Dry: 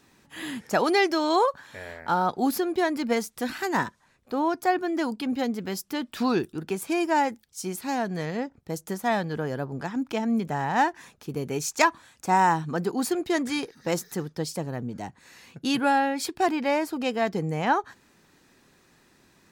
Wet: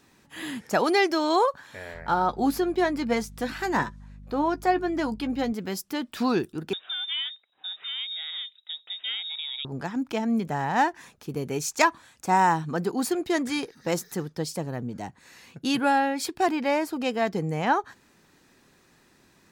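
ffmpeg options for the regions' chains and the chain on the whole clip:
ffmpeg -i in.wav -filter_complex "[0:a]asettb=1/sr,asplit=3[link_01][link_02][link_03];[link_01]atrim=end=1.944[link_04];[link_02]atrim=start=1.94:end=5.53,asetpts=PTS-STARTPTS,afade=type=in:duration=0.004:curve=qsin,afade=type=out:start_time=3.586:duration=0.004:curve=qsin,highshelf=frequency=8700:gain=-8,aeval=exprs='val(0)+0.00708*(sin(2*PI*50*n/s)+sin(2*PI*2*50*n/s)/2+sin(2*PI*3*50*n/s)/3+sin(2*PI*4*50*n/s)/4+sin(2*PI*5*50*n/s)/5)':channel_layout=same,asplit=2[link_05][link_06];[link_06]adelay=14,volume=-11dB[link_07];[link_05][link_07]amix=inputs=2:normalize=0,atrim=end_sample=158319[link_08];[link_03]atrim=start=5.526[link_09];[link_04][link_08]acrossfade=duration=0.004:curve1=hsin:curve2=qsin[link_10];[link_10][link_09]acrossfade=duration=0.004:curve1=qsin:curve2=hsin,asettb=1/sr,asplit=3[link_11][link_12][link_13];[link_11]atrim=end=6.734[link_14];[link_12]atrim=start=6.73:end=9.65,asetpts=PTS-STARTPTS,afade=type=in:duration=0.004:curve=qsin,afade=type=out:start_time=2.916:duration=0.004:curve=qsin,acompressor=threshold=-33dB:ratio=2:attack=3.2:release=140:knee=1:detection=peak,lowpass=frequency=3300:width_type=q:width=0.5098,lowpass=frequency=3300:width_type=q:width=0.6013,lowpass=frequency=3300:width_type=q:width=0.9,lowpass=frequency=3300:width_type=q:width=2.563,afreqshift=-3900,highpass=frequency=420:poles=1[link_15];[link_13]atrim=start=9.646[link_16];[link_14][link_15]acrossfade=duration=0.004:curve1=hsin:curve2=qsin[link_17];[link_17][link_16]acrossfade=duration=0.004:curve1=qsin:curve2=hsin" out.wav

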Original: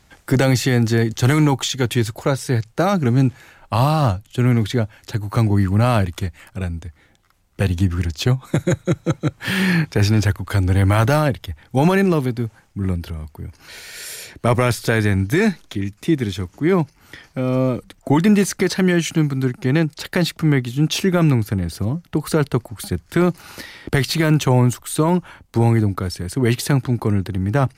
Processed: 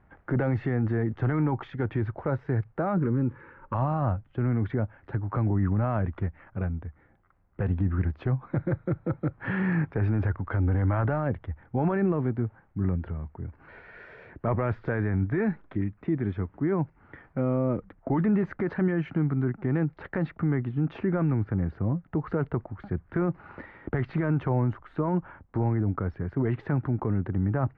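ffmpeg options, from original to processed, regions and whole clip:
ffmpeg -i in.wav -filter_complex "[0:a]asettb=1/sr,asplit=3[link_01][link_02][link_03];[link_01]atrim=end=2.974[link_04];[link_02]atrim=start=2.97:end=3.75,asetpts=PTS-STARTPTS,afade=type=in:duration=0.004:curve=qsin,afade=type=out:start_time=0.776:duration=0.004:curve=qsin,equalizer=frequency=530:width_type=o:width=2.9:gain=6.5,acompressor=threshold=-15dB:ratio=6:attack=3.2:release=140:knee=1:detection=peak,asuperstop=centerf=700:order=12:qfactor=2.6[link_05];[link_03]atrim=start=3.746[link_06];[link_04][link_05]acrossfade=duration=0.004:curve1=hsin:curve2=qsin[link_07];[link_07][link_06]acrossfade=duration=0.004:curve1=qsin:curve2=hsin,alimiter=limit=-13dB:level=0:latency=1:release=23,lowpass=frequency=1700:width=0.5412,lowpass=frequency=1700:width=1.3066,volume=-4.5dB" out.wav

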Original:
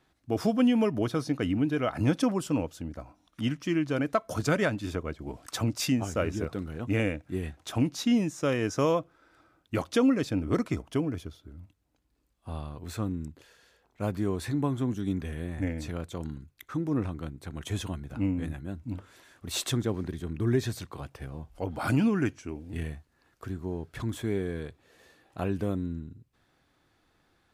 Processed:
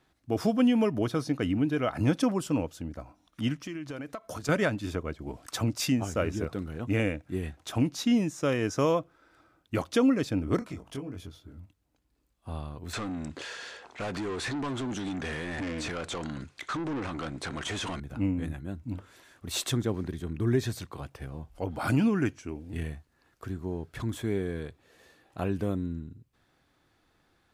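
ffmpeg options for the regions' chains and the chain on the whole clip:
ffmpeg -i in.wav -filter_complex "[0:a]asettb=1/sr,asplit=3[link_01][link_02][link_03];[link_01]atrim=end=3.664[link_04];[link_02]atrim=start=3.66:end=4.49,asetpts=PTS-STARTPTS,afade=type=in:duration=0.004:curve=qsin,afade=type=out:start_time=0.826:duration=0.004:curve=qsin,lowshelf=frequency=410:gain=-4,acompressor=threshold=-33dB:ratio=12:attack=3.2:release=140:knee=1:detection=peak[link_05];[link_03]atrim=start=4.486[link_06];[link_04][link_05]acrossfade=duration=0.004:curve1=hsin:curve2=qsin[link_07];[link_07][link_06]acrossfade=duration=0.004:curve1=qsin:curve2=hsin,asettb=1/sr,asplit=3[link_08][link_09][link_10];[link_08]atrim=end=10.594[link_11];[link_09]atrim=start=10.59:end=11.59,asetpts=PTS-STARTPTS,afade=type=in:duration=0.004:curve=qsin,afade=type=out:start_time=0.996:duration=0.004:curve=qsin,acompressor=threshold=-40dB:ratio=2.5:attack=3.2:release=140:knee=1:detection=peak,asplit=2[link_12][link_13];[link_13]adelay=22,volume=-4dB[link_14];[link_12][link_14]amix=inputs=2:normalize=0,atrim=end_sample=44100[link_15];[link_10]atrim=start=11.586[link_16];[link_11][link_15]acrossfade=duration=0.004:curve1=hsin:curve2=qsin[link_17];[link_17][link_16]acrossfade=duration=0.004:curve1=qsin:curve2=hsin,asettb=1/sr,asplit=3[link_18][link_19][link_20];[link_18]atrim=end=12.934[link_21];[link_19]atrim=start=12.93:end=18,asetpts=PTS-STARTPTS,afade=type=in:duration=0.004:curve=qsin,afade=type=out:start_time=5.066:duration=0.004:curve=qsin,acompressor=threshold=-38dB:ratio=2.5:attack=3.2:release=140:knee=1:detection=peak,asplit=2[link_22][link_23];[link_23]highpass=frequency=720:poles=1,volume=28dB,asoftclip=type=tanh:threshold=-25.5dB[link_24];[link_22][link_24]amix=inputs=2:normalize=0,lowpass=frequency=5400:poles=1,volume=-6dB,lowpass=frequency=9100:width=0.5412,lowpass=frequency=9100:width=1.3066[link_25];[link_20]atrim=start=17.996[link_26];[link_21][link_25]acrossfade=duration=0.004:curve1=hsin:curve2=qsin[link_27];[link_27][link_26]acrossfade=duration=0.004:curve1=qsin:curve2=hsin" out.wav

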